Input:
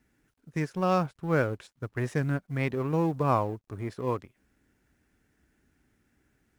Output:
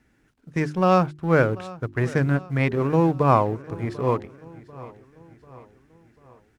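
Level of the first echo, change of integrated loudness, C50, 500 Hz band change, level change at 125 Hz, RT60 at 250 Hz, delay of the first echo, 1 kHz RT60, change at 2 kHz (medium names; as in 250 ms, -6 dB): -19.5 dB, +7.0 dB, no reverb, +7.5 dB, +7.0 dB, no reverb, 742 ms, no reverb, +7.0 dB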